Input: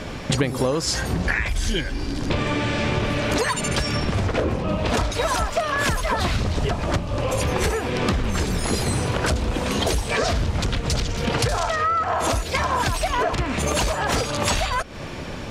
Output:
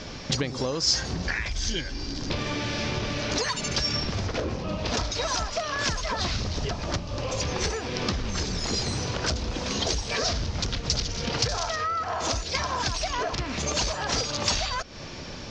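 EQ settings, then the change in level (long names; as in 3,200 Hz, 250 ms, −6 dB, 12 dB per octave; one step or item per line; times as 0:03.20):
low-pass with resonance 6,300 Hz, resonance Q 2.8
high-frequency loss of the air 100 metres
parametric band 5,000 Hz +9 dB 1 octave
−7.0 dB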